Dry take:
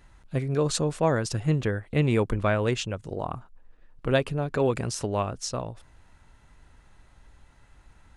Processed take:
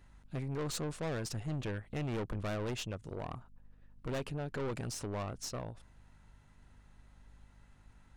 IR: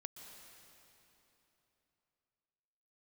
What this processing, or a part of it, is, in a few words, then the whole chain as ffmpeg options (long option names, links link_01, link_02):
valve amplifier with mains hum: -af "aeval=exprs='(tanh(25.1*val(0)+0.45)-tanh(0.45))/25.1':channel_layout=same,aeval=exprs='val(0)+0.00158*(sin(2*PI*50*n/s)+sin(2*PI*2*50*n/s)/2+sin(2*PI*3*50*n/s)/3+sin(2*PI*4*50*n/s)/4+sin(2*PI*5*50*n/s)/5)':channel_layout=same,volume=-5.5dB"